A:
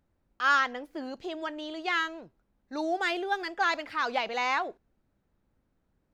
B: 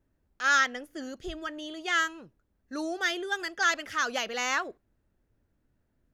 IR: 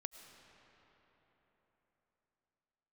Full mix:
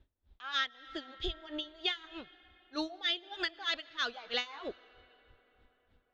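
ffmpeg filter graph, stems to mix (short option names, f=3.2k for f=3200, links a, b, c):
-filter_complex "[0:a]lowpass=4.1k,flanger=delay=5.8:depth=5.3:regen=45:speed=2:shape=sinusoidal,volume=-12.5dB[a];[1:a]lowpass=f=3.6k:t=q:w=5.3,lowshelf=f=100:t=q:w=1.5:g=6.5,aeval=exprs='val(0)*pow(10,-35*(0.5-0.5*cos(2*PI*3.2*n/s))/20)':c=same,volume=-1,volume=2.5dB,asplit=2[b][c];[c]volume=-12dB[d];[2:a]atrim=start_sample=2205[e];[d][e]afir=irnorm=-1:irlink=0[f];[a][b][f]amix=inputs=3:normalize=0,acompressor=threshold=-30dB:ratio=6"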